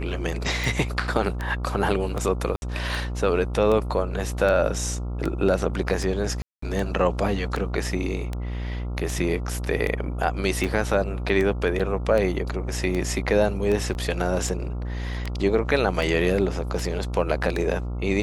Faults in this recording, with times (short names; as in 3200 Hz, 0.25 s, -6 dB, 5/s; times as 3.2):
buzz 60 Hz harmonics 23 -29 dBFS
tick 78 rpm
2.56–2.62 gap 61 ms
6.42–6.62 gap 0.204 s
11.79–11.8 gap 6.5 ms
13.94–13.95 gap 9.6 ms